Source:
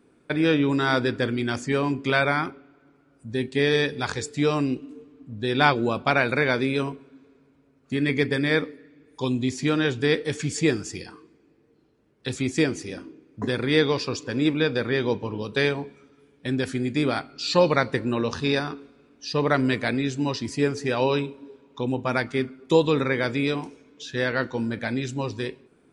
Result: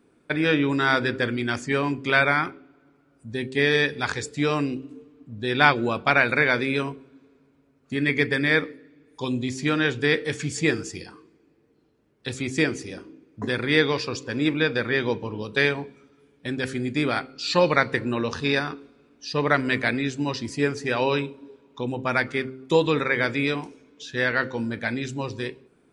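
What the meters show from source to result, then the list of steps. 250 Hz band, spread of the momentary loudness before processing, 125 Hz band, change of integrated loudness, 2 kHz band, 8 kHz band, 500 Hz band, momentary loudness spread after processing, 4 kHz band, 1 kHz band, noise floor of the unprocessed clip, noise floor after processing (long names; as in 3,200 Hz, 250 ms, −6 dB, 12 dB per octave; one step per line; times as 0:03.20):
−1.5 dB, 12 LU, −1.5 dB, +0.5 dB, +4.0 dB, −1.0 dB, −1.0 dB, 14 LU, +0.5 dB, +1.0 dB, −61 dBFS, −62 dBFS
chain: hum removal 65.52 Hz, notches 8
dynamic equaliser 1,900 Hz, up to +6 dB, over −37 dBFS, Q 1.1
level −1 dB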